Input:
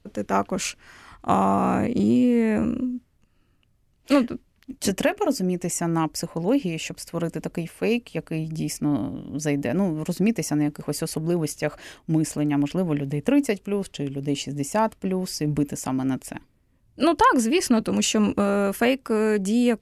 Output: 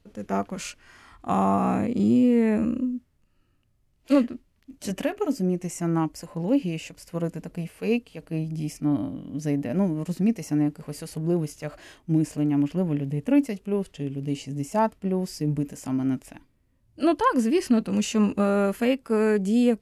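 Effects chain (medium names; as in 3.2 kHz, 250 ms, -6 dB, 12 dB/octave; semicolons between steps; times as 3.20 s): harmonic-percussive split percussive -11 dB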